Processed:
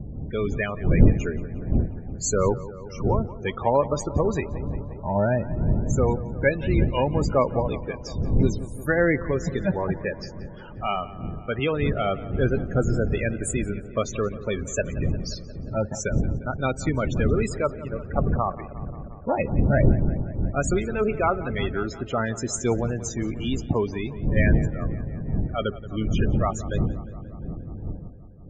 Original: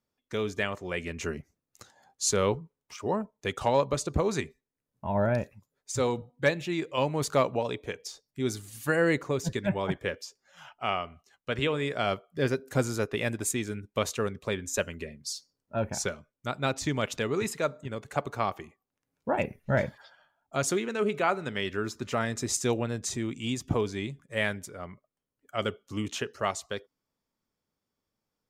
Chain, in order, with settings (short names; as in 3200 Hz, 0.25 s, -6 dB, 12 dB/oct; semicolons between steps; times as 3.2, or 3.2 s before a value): wind noise 150 Hz -31 dBFS; wow and flutter 52 cents; loudest bins only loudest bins 32; on a send: darkening echo 0.177 s, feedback 78%, low-pass 2900 Hz, level -16.5 dB; on the sum: gain +4 dB